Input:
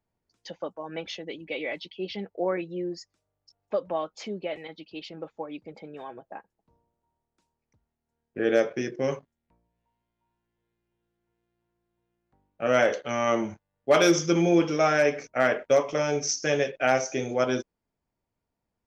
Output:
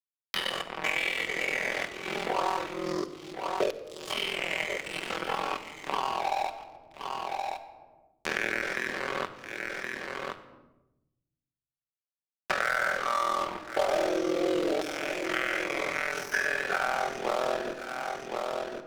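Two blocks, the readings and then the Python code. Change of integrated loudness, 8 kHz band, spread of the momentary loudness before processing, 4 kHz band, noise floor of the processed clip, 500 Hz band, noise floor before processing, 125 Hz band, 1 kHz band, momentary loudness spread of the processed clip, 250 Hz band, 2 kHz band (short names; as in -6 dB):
-4.5 dB, n/a, 19 LU, +2.0 dB, under -85 dBFS, -6.0 dB, -84 dBFS, -12.5 dB, +1.5 dB, 9 LU, -7.5 dB, +3.0 dB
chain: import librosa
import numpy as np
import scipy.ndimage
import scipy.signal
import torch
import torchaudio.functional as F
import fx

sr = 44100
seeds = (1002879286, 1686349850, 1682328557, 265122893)

p1 = fx.spec_dilate(x, sr, span_ms=240)
p2 = fx.highpass(p1, sr, hz=160.0, slope=6)
p3 = fx.peak_eq(p2, sr, hz=360.0, db=4.0, octaves=1.1)
p4 = fx.notch(p3, sr, hz=560.0, q=12.0)
p5 = fx.over_compress(p4, sr, threshold_db=-28.0, ratio=-1.0)
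p6 = p4 + (p5 * 10.0 ** (-2.0 / 20.0))
p7 = fx.filter_lfo_bandpass(p6, sr, shape='saw_down', hz=0.27, low_hz=440.0, high_hz=4100.0, q=2.8)
p8 = np.sign(p7) * np.maximum(np.abs(p7) - 10.0 ** (-35.0 / 20.0), 0.0)
p9 = p8 * np.sin(2.0 * np.pi * 21.0 * np.arange(len(p8)) / sr)
p10 = np.clip(10.0 ** (20.5 / 20.0) * p9, -1.0, 1.0) / 10.0 ** (20.5 / 20.0)
p11 = p10 + 10.0 ** (-19.5 / 20.0) * np.pad(p10, (int(1071 * sr / 1000.0), 0))[:len(p10)]
p12 = fx.room_shoebox(p11, sr, seeds[0], volume_m3=2900.0, walls='furnished', distance_m=1.1)
p13 = fx.band_squash(p12, sr, depth_pct=100)
y = p13 * 10.0 ** (3.5 / 20.0)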